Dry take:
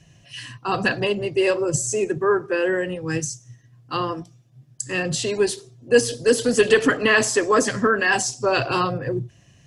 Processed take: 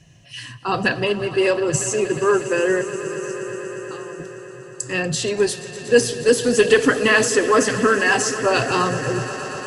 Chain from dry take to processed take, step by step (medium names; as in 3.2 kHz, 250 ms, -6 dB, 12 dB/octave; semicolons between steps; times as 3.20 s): 2.81–4.20 s: compression, threshold -40 dBFS, peak gain reduction 18.5 dB; echo with a slow build-up 119 ms, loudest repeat 5, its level -17.5 dB; trim +1.5 dB